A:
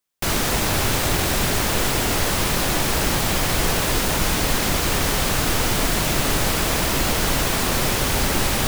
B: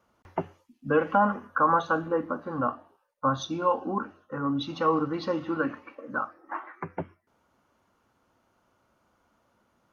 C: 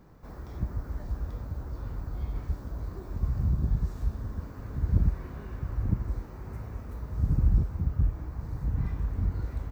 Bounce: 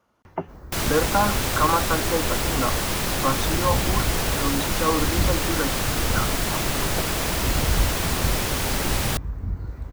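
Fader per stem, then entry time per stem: -4.0, +1.0, 0.0 dB; 0.50, 0.00, 0.25 s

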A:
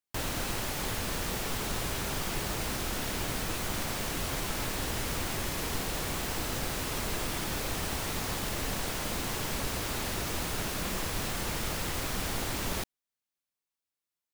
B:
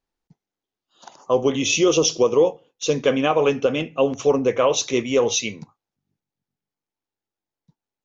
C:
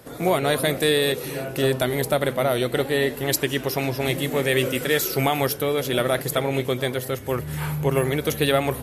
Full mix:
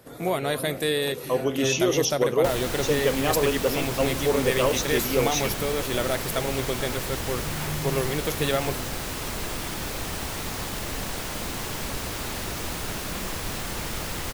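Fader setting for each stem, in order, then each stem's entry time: +2.0, -6.0, -5.0 dB; 2.30, 0.00, 0.00 s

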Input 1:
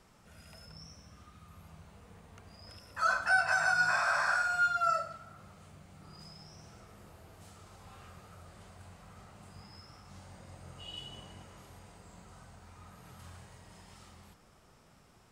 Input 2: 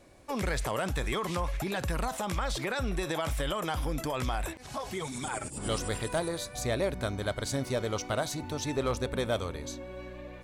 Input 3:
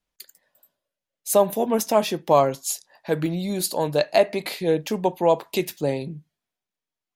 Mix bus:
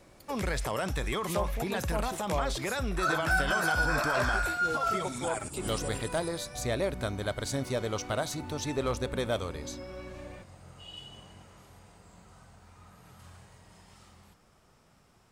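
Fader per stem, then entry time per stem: -1.0, -0.5, -16.0 dB; 0.00, 0.00, 0.00 s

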